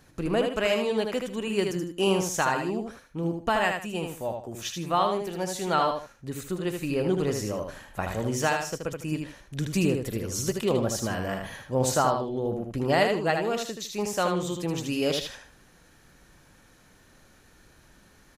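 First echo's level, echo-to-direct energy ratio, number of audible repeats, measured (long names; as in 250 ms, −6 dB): −5.0 dB, −4.5 dB, 2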